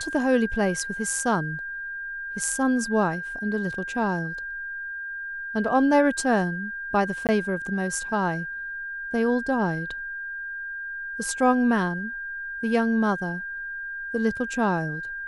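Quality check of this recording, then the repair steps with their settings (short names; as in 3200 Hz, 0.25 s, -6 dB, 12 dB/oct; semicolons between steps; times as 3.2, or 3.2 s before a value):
tone 1600 Hz -31 dBFS
7.27–7.29 gap 18 ms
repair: notch 1600 Hz, Q 30; interpolate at 7.27, 18 ms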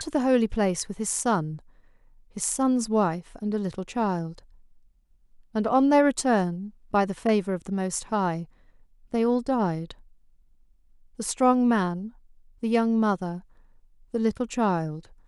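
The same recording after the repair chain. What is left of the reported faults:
none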